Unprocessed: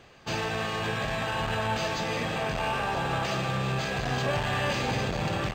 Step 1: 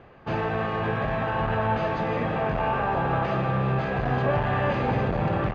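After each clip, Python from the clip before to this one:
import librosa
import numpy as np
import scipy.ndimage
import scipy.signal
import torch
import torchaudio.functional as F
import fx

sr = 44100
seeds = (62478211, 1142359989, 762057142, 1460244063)

y = scipy.signal.sosfilt(scipy.signal.butter(2, 1500.0, 'lowpass', fs=sr, output='sos'), x)
y = y * librosa.db_to_amplitude(5.0)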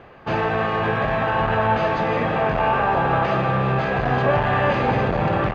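y = fx.low_shelf(x, sr, hz=350.0, db=-5.0)
y = y * librosa.db_to_amplitude(7.0)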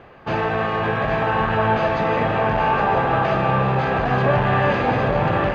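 y = x + 10.0 ** (-6.5 / 20.0) * np.pad(x, (int(818 * sr / 1000.0), 0))[:len(x)]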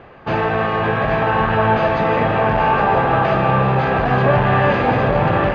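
y = fx.air_absorb(x, sr, metres=72.0)
y = y * librosa.db_to_amplitude(3.5)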